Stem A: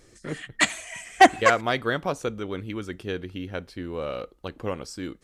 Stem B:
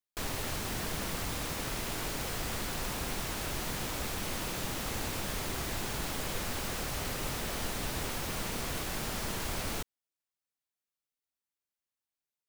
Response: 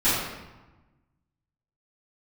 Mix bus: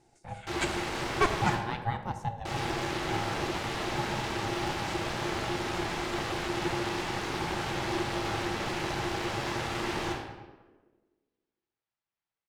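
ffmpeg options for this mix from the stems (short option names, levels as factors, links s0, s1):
-filter_complex "[0:a]volume=0.299,asplit=2[s0][s1];[s1]volume=0.0708[s2];[1:a]lowshelf=f=370:g=-11.5,adynamicsmooth=sensitivity=8:basefreq=3500,adelay=300,volume=1.33,asplit=3[s3][s4][s5];[s3]atrim=end=1.55,asetpts=PTS-STARTPTS,afade=t=out:st=1.546:d=0.004:c=hsin[s6];[s4]atrim=start=1.55:end=2.45,asetpts=PTS-STARTPTS,volume=0[s7];[s5]atrim=start=2.45,asetpts=PTS-STARTPTS,afade=t=in:d=0.004:c=hsin[s8];[s6][s7][s8]concat=n=3:v=0:a=1,asplit=2[s9][s10];[s10]volume=0.282[s11];[2:a]atrim=start_sample=2205[s12];[s2][s11]amix=inputs=2:normalize=0[s13];[s13][s12]afir=irnorm=-1:irlink=0[s14];[s0][s9][s14]amix=inputs=3:normalize=0,equalizer=f=470:t=o:w=0.25:g=13.5,aeval=exprs='val(0)*sin(2*PI*350*n/s)':c=same"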